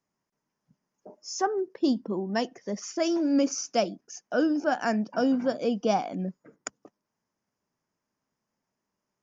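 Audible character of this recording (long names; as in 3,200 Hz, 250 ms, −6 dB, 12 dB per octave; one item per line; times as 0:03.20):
background noise floor −85 dBFS
spectral slope −4.5 dB per octave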